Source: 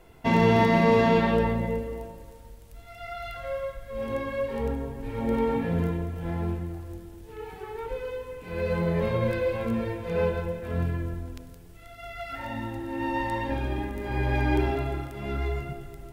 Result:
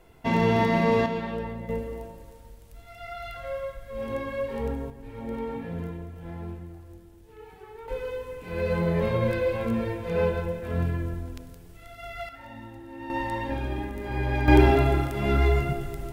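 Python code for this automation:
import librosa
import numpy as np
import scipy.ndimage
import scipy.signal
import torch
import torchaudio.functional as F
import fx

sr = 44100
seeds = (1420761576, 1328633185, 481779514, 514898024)

y = fx.gain(x, sr, db=fx.steps((0.0, -2.0), (1.06, -9.0), (1.69, -1.0), (4.9, -7.5), (7.88, 1.0), (12.29, -9.0), (13.1, -1.0), (14.48, 8.0)))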